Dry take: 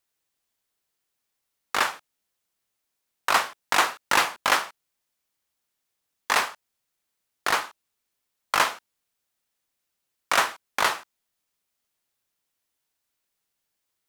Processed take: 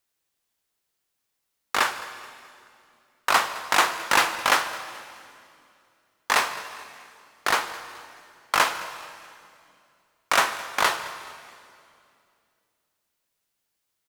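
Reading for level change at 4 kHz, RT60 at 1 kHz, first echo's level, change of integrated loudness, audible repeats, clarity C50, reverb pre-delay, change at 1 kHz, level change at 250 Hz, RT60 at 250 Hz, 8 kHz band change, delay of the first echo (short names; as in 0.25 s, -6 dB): +1.5 dB, 2.3 s, -19.5 dB, +0.5 dB, 3, 11.0 dB, 27 ms, +1.5 dB, +1.5 dB, 3.0 s, +1.5 dB, 0.214 s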